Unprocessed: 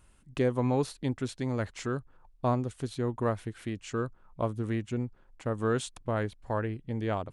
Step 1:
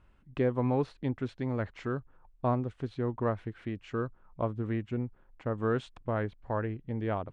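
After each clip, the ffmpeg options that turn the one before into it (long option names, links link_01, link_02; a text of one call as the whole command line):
ffmpeg -i in.wav -af "lowpass=2500,volume=-1dB" out.wav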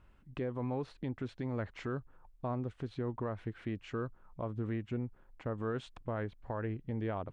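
ffmpeg -i in.wav -af "alimiter=level_in=3.5dB:limit=-24dB:level=0:latency=1:release=135,volume=-3.5dB" out.wav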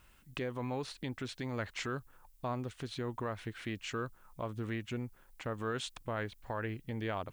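ffmpeg -i in.wav -af "crystalizer=i=9.5:c=0,volume=-2.5dB" out.wav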